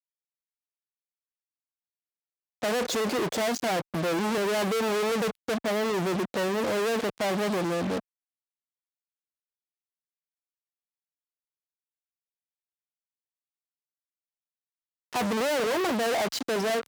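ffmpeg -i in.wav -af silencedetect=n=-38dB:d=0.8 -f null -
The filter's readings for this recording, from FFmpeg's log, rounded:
silence_start: 0.00
silence_end: 2.62 | silence_duration: 2.62
silence_start: 8.00
silence_end: 15.13 | silence_duration: 7.13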